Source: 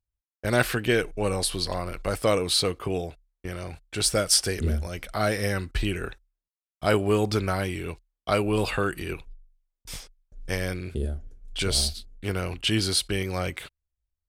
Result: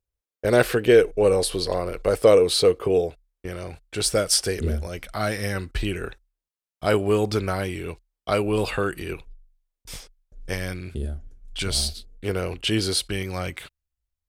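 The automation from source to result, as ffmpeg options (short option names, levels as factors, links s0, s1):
-af "asetnsamples=n=441:p=0,asendcmd='3.08 equalizer g 5;4.99 equalizer g -3;5.55 equalizer g 3;10.53 equalizer g -4;11.89 equalizer g 7;13.04 equalizer g -2',equalizer=f=460:t=o:w=0.76:g=12"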